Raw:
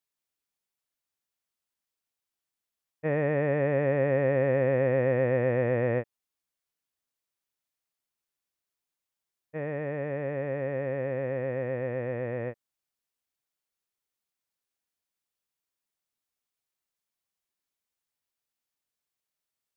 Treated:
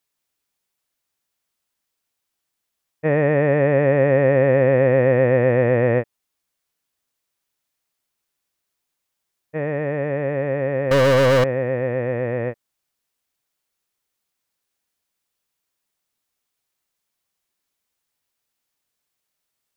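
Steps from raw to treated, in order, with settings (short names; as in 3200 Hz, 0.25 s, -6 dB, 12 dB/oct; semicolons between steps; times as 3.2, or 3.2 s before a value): 10.91–11.44 sample leveller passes 5; gain +9 dB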